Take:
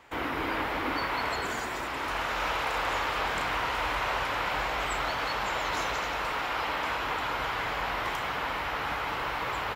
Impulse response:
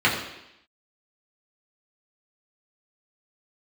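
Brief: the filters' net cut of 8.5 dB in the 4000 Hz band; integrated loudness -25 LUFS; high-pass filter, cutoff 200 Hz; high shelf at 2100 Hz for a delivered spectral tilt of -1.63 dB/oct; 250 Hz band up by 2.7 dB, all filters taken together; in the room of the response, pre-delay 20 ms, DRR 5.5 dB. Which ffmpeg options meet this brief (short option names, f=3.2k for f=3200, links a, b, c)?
-filter_complex "[0:a]highpass=200,equalizer=f=250:t=o:g=5,highshelf=f=2.1k:g=-5.5,equalizer=f=4k:t=o:g=-6.5,asplit=2[a][b];[1:a]atrim=start_sample=2205,adelay=20[c];[b][c]afir=irnorm=-1:irlink=0,volume=-24.5dB[d];[a][d]amix=inputs=2:normalize=0,volume=6.5dB"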